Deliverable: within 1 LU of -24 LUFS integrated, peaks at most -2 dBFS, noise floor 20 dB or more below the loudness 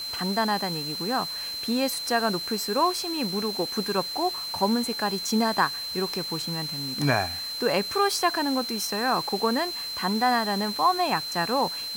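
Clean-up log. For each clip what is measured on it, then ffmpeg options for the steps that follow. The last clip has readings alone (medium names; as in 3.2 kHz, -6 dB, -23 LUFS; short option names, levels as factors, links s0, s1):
steady tone 4.1 kHz; tone level -31 dBFS; noise floor -34 dBFS; noise floor target -46 dBFS; loudness -25.5 LUFS; peak level -8.5 dBFS; loudness target -24.0 LUFS
-> -af "bandreject=f=4100:w=30"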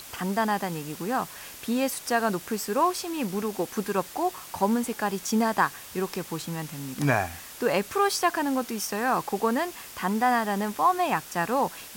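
steady tone not found; noise floor -44 dBFS; noise floor target -48 dBFS
-> -af "afftdn=nr=6:nf=-44"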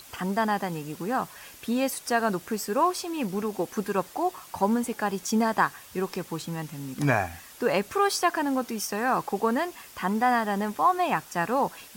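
noise floor -48 dBFS; loudness -27.5 LUFS; peak level -8.5 dBFS; loudness target -24.0 LUFS
-> -af "volume=1.5"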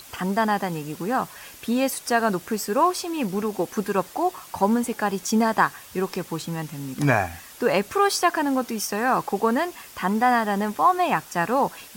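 loudness -24.0 LUFS; peak level -5.0 dBFS; noise floor -45 dBFS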